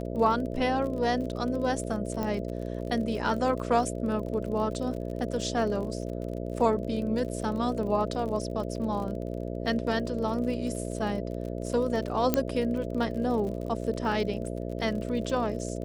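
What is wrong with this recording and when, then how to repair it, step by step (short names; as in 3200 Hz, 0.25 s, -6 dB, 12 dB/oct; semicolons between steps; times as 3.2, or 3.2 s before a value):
buzz 60 Hz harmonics 11 -34 dBFS
crackle 42/s -36 dBFS
2.23 pop -18 dBFS
12.34 pop -9 dBFS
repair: de-click; de-hum 60 Hz, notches 11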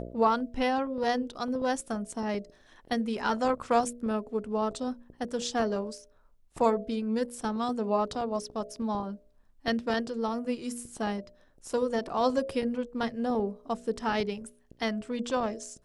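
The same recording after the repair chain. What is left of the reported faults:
none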